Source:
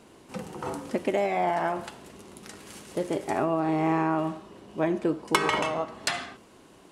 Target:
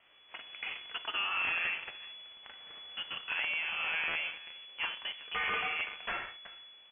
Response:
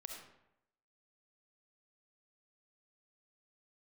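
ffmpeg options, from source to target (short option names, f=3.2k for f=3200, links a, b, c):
-filter_complex "[0:a]aderivative,acrossover=split=330|1700[a][b][c];[a]alimiter=level_in=35.5dB:limit=-24dB:level=0:latency=1,volume=-35.5dB[d];[d][b][c]amix=inputs=3:normalize=0,asplit=2[e][f];[f]adelay=379,volume=-17dB,highshelf=f=4k:g=-8.53[g];[e][g]amix=inputs=2:normalize=0,asplit=2[h][i];[i]highpass=f=720:p=1,volume=27dB,asoftclip=type=tanh:threshold=-11.5dB[j];[h][j]amix=inputs=2:normalize=0,lowpass=f=1k:p=1,volume=-6dB,acrusher=bits=7:dc=4:mix=0:aa=0.000001,aeval=exprs='(mod(11.2*val(0)+1,2)-1)/11.2':c=same,asplit=2[k][l];[1:a]atrim=start_sample=2205,asetrate=83790,aresample=44100[m];[l][m]afir=irnorm=-1:irlink=0,volume=-1dB[n];[k][n]amix=inputs=2:normalize=0,lowpass=f=2.9k:t=q:w=0.5098,lowpass=f=2.9k:t=q:w=0.6013,lowpass=f=2.9k:t=q:w=0.9,lowpass=f=2.9k:t=q:w=2.563,afreqshift=-3400,volume=-4.5dB"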